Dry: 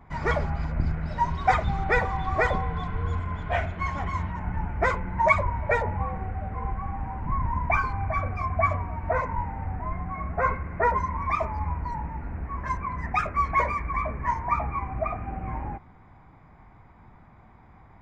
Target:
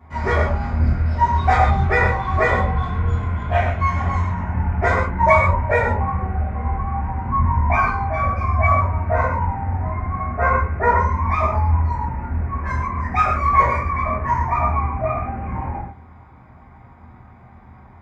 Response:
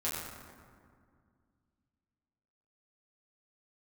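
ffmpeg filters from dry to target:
-filter_complex "[0:a]highpass=44[a];[1:a]atrim=start_sample=2205,afade=t=out:st=0.21:d=0.01,atrim=end_sample=9702[b];[a][b]afir=irnorm=-1:irlink=0,volume=2dB"

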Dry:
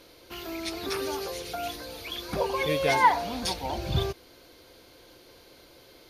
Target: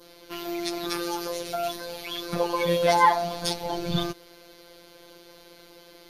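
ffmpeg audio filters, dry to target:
-af "adynamicequalizer=threshold=0.00501:dfrequency=2400:dqfactor=1.7:tfrequency=2400:tqfactor=1.7:attack=5:release=100:ratio=0.375:range=2.5:mode=cutabove:tftype=bell,afftfilt=real='hypot(re,im)*cos(PI*b)':imag='0':win_size=1024:overlap=0.75,volume=6dB"

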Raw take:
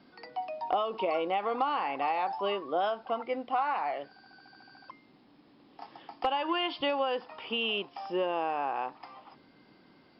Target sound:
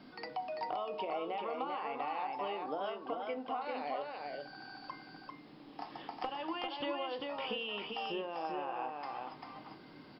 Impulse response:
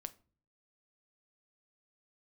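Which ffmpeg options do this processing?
-filter_complex "[0:a]asettb=1/sr,asplit=3[a][b][c];[a]atrim=end=3.614[d];[b]atrim=start=3.61:end=4.02,asetpts=PTS-STARTPTS,afade=t=in:d=0.004:c=qsin,afade=t=out:st=0.406:d=0.004:c=qsin,equalizer=f=500:t=o:w=1:g=12,equalizer=f=1k:t=o:w=1:g=-11,equalizer=f=4k:t=o:w=1:g=12[e];[c]atrim=start=4.016[f];[d][e]acrossfade=d=0.004:c1=hsin:c2=qsin[g];[g][f]acrossfade=d=0.004:c1=qsin:c2=hsin,acompressor=threshold=-41dB:ratio=6,aecho=1:1:394:0.668[h];[1:a]atrim=start_sample=2205[i];[h][i]afir=irnorm=-1:irlink=0,volume=7.5dB"

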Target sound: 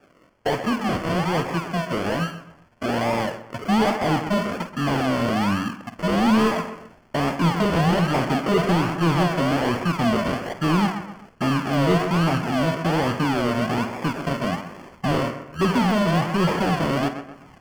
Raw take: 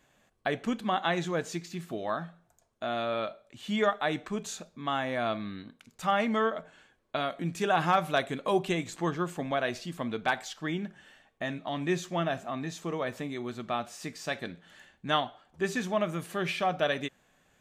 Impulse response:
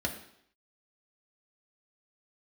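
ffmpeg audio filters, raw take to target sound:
-filter_complex "[0:a]asubboost=boost=10:cutoff=200,acrusher=samples=42:mix=1:aa=0.000001:lfo=1:lforange=25.2:lforate=1.2,asuperstop=centerf=3800:order=4:qfactor=4.7,asplit=2[a][b];[b]adelay=129,lowpass=f=2.6k:p=1,volume=-17dB,asplit=2[c][d];[d]adelay=129,lowpass=f=2.6k:p=1,volume=0.39,asplit=2[e][f];[f]adelay=129,lowpass=f=2.6k:p=1,volume=0.39[g];[a][c][e][g]amix=inputs=4:normalize=0,asplit=2[h][i];[i]highpass=f=720:p=1,volume=25dB,asoftclip=type=tanh:threshold=-10.5dB[j];[h][j]amix=inputs=2:normalize=0,lowpass=f=2.2k:p=1,volume=-6dB,asplit=2[k][l];[l]adelay=50,volume=-12.5dB[m];[k][m]amix=inputs=2:normalize=0"

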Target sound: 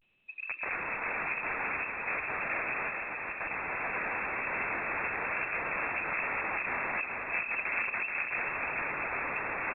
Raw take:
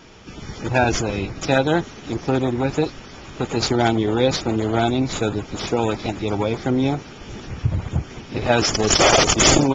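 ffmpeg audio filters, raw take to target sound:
-af "highpass=f=81:w=0.5412,highpass=f=81:w=1.3066,agate=range=-33dB:threshold=-35dB:ratio=3:detection=peak,anlmdn=15.8,adynamicequalizer=threshold=0.0355:dfrequency=430:dqfactor=0.71:tfrequency=430:tqfactor=0.71:attack=5:release=100:ratio=0.375:range=2.5:mode=cutabove:tftype=bell,alimiter=limit=-14.5dB:level=0:latency=1:release=14,dynaudnorm=f=230:g=7:m=4.5dB,aresample=16000,aeval=exprs='(mod(21.1*val(0)+1,2)-1)/21.1':c=same,aresample=44100,asetrate=31183,aresample=44100,atempo=1.41421,asoftclip=type=hard:threshold=-27.5dB,aecho=1:1:430|817|1165|1479|1761:0.631|0.398|0.251|0.158|0.1,lowpass=f=2.3k:t=q:w=0.5098,lowpass=f=2.3k:t=q:w=0.6013,lowpass=f=2.3k:t=q:w=0.9,lowpass=f=2.3k:t=q:w=2.563,afreqshift=-2700,volume=-1dB" -ar 8000 -c:a pcm_alaw

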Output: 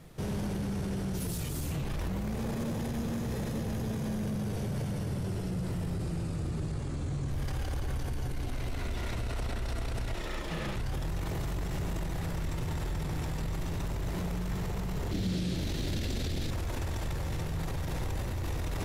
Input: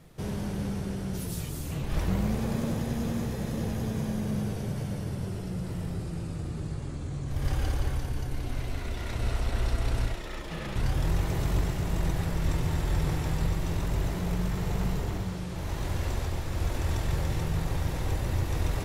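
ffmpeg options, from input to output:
-filter_complex "[0:a]asplit=2[a][b];[b]aeval=exprs='0.0251*(abs(mod(val(0)/0.0251+3,4)-2)-1)':c=same,volume=-12dB[c];[a][c]amix=inputs=2:normalize=0,alimiter=level_in=3dB:limit=-24dB:level=0:latency=1:release=20,volume=-3dB,asettb=1/sr,asplit=3[d][e][f];[d]atrim=end=15.114[g];[e]atrim=start=15.11:end=16.51,asetpts=PTS-STARTPTS,afade=t=in:d=0.004:c=qsin,afade=t=out:st=1.396:d=0.004:c=qsin,equalizer=f=250:t=o:w=1:g=8,equalizer=f=1k:t=o:w=1:g=-10,equalizer=f=4k:t=o:w=1:g=9[h];[f]atrim=start=16.506[i];[g][h]acrossfade=d=0.004:c1=hsin:c2=qsin[j];[j][i]acrossfade=d=0.004:c1=qsin:c2=hsin"

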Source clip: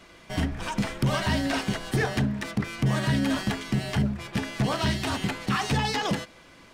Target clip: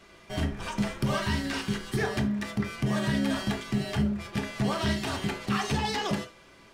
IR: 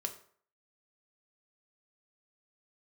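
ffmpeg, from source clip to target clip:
-filter_complex "[0:a]asettb=1/sr,asplit=3[a][b][c];[a]atrim=end=1.204[d];[b]atrim=start=1.2:end=1.99,asetpts=PTS-STARTPTS,afade=t=in:d=0.004:c=qsin,afade=t=out:st=0.786:d=0.004:c=qsin,equalizer=f=650:t=o:w=0.43:g=-15[e];[c]atrim=start=1.986[f];[d][e]acrossfade=d=0.004:c1=hsin:c2=qsin[g];[g][f]acrossfade=d=0.004:c1=qsin:c2=hsin[h];[1:a]atrim=start_sample=2205,afade=t=out:st=0.14:d=0.01,atrim=end_sample=6615[i];[h][i]afir=irnorm=-1:irlink=0,volume=-2.5dB"

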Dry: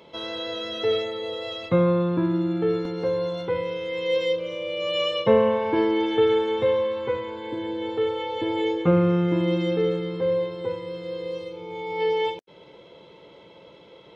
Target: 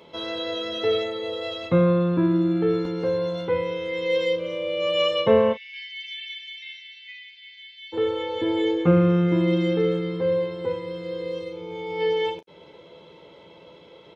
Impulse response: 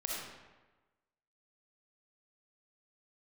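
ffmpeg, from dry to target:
-filter_complex "[0:a]asplit=3[a][b][c];[a]afade=t=out:st=5.52:d=0.02[d];[b]asuperpass=centerf=3500:order=20:qfactor=0.8,afade=t=in:st=5.52:d=0.02,afade=t=out:st=7.92:d=0.02[e];[c]afade=t=in:st=7.92:d=0.02[f];[d][e][f]amix=inputs=3:normalize=0,aecho=1:1:12|36:0.355|0.211"

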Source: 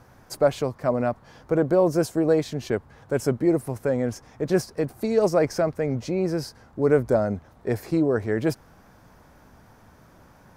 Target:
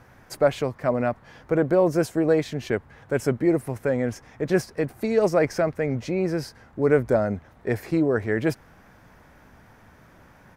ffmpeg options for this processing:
-af "firequalizer=gain_entry='entry(1100,0);entry(1900,6);entry(4500,-2)':delay=0.05:min_phase=1"

